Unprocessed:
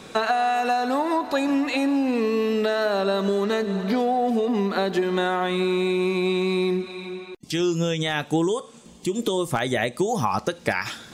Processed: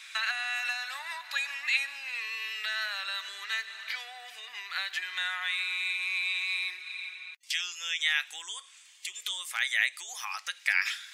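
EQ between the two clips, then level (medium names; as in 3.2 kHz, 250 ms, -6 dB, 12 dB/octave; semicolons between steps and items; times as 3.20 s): ladder high-pass 1.7 kHz, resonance 45%; +6.5 dB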